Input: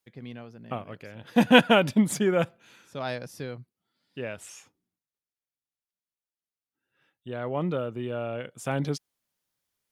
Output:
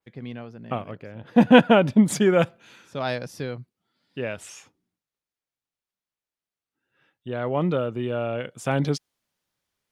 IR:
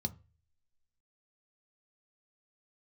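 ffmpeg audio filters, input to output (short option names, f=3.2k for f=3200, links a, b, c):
-af "asetnsamples=n=441:p=0,asendcmd='0.91 lowpass f 1000;2.08 lowpass f 4000',lowpass=f=3.9k:p=1,adynamicequalizer=threshold=0.00501:dfrequency=3000:dqfactor=0.7:tfrequency=3000:tqfactor=0.7:attack=5:release=100:ratio=0.375:range=2:mode=boostabove:tftype=highshelf,volume=5dB"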